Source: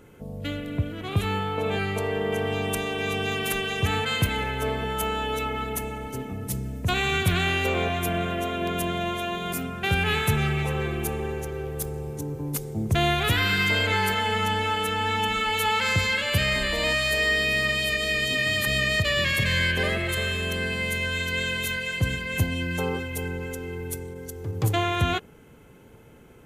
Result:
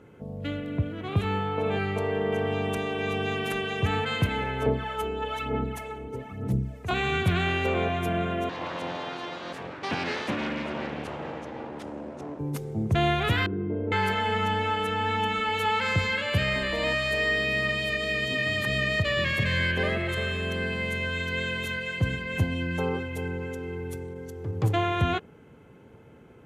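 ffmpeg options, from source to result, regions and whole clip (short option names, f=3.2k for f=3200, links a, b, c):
-filter_complex "[0:a]asettb=1/sr,asplit=3[a][b][c];[a]atrim=end=4.664[d];[b]atrim=start=4.66:end=6.91,asetpts=PTS-STARTPTS,afade=t=in:d=0.004:c=qsin,afade=t=out:st=2.246:d=0.004:c=qsin,acrossover=split=630[e][f];[e]aeval=exprs='val(0)*(1-0.7/2+0.7/2*cos(2*PI*2.1*n/s))':c=same[g];[f]aeval=exprs='val(0)*(1-0.7/2-0.7/2*cos(2*PI*2.1*n/s))':c=same[h];[g][h]amix=inputs=2:normalize=0,aphaser=in_gain=1:out_gain=1:delay=2.7:decay=0.56:speed=1.1:type=sinusoidal[i];[c]atrim=start=6.906[j];[d][i]acrossfade=d=0.004:c1=hsin:c2=qsin[k];[k][j]acrossfade=d=0.004:c1=qsin:c2=hsin,asettb=1/sr,asplit=3[l][m][n];[l]atrim=end=8.494[o];[m]atrim=start=8.49:end=12.39,asetpts=PTS-STARTPTS,afade=t=in:d=0.004:c=qsin,afade=t=out:st=3.896:d=0.004:c=qsin,aeval=exprs='abs(val(0))':c=same,highpass=100,lowpass=6.9k,bandreject=f=1.2k:w=28[p];[n]atrim=start=12.386[q];[o][p]acrossfade=d=0.004:c1=hsin:c2=qsin[r];[r][q]acrossfade=d=0.004:c1=qsin:c2=hsin,asettb=1/sr,asplit=3[s][t][u];[s]atrim=end=13.464[v];[t]atrim=start=13.46:end=13.92,asetpts=PTS-STARTPTS,afade=t=in:d=0.004:c=qsin,afade=t=out:st=0.456:d=0.004:c=qsin,lowpass=f=350:t=q:w=3.7,equalizer=f=150:w=0.37:g=-5[w];[u]atrim=start=13.916[x];[v][w]acrossfade=d=0.004:c1=hsin:c2=qsin[y];[y][x]acrossfade=d=0.004:c1=qsin:c2=hsin,highpass=70,aemphasis=mode=reproduction:type=75kf"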